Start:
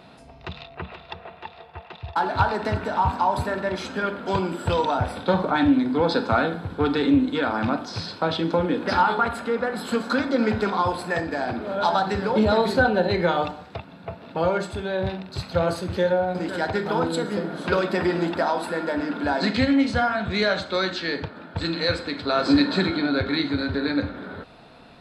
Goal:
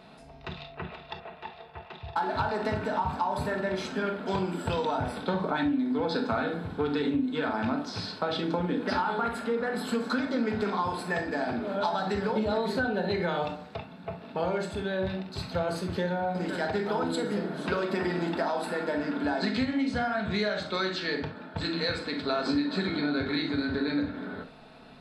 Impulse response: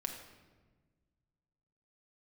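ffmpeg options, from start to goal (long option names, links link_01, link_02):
-filter_complex "[1:a]atrim=start_sample=2205,atrim=end_sample=3528,asetrate=48510,aresample=44100[link_01];[0:a][link_01]afir=irnorm=-1:irlink=0,acompressor=threshold=-23dB:ratio=6,volume=-1.5dB"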